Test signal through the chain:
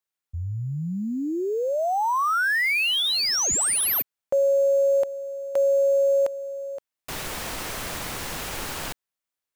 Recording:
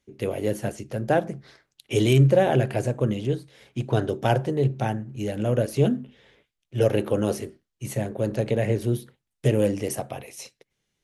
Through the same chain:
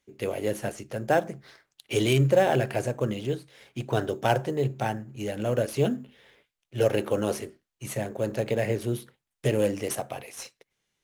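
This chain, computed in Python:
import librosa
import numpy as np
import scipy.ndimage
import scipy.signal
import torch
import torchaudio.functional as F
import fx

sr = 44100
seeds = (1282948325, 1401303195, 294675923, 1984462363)

p1 = fx.low_shelf(x, sr, hz=450.0, db=-8.5)
p2 = fx.sample_hold(p1, sr, seeds[0], rate_hz=7000.0, jitter_pct=0)
y = p1 + (p2 * 10.0 ** (-11.5 / 20.0))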